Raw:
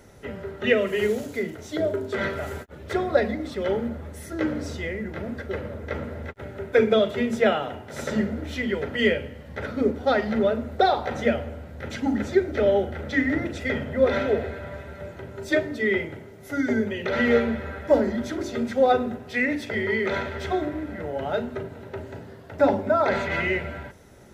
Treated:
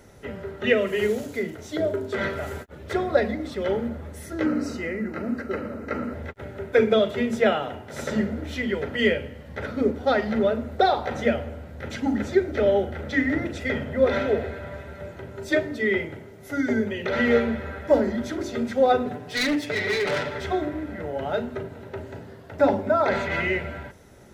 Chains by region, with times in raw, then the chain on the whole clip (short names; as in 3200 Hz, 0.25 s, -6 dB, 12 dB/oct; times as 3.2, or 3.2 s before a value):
4.46–6.14 Butterworth band-stop 3400 Hz, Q 4.6 + low shelf 170 Hz -9.5 dB + small resonant body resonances 250/1300 Hz, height 11 dB, ringing for 30 ms
19.05–20.41 self-modulated delay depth 0.17 ms + comb 6.8 ms, depth 91% + hard clip -19 dBFS
whole clip: dry